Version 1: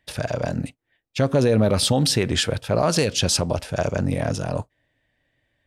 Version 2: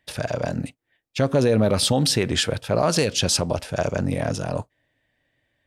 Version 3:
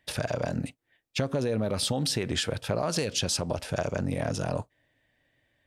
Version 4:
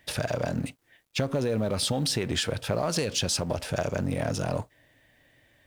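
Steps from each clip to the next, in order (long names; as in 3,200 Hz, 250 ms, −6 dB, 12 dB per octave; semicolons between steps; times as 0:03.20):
low-shelf EQ 75 Hz −6 dB
downward compressor, threshold −25 dBFS, peak gain reduction 10 dB
mu-law and A-law mismatch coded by mu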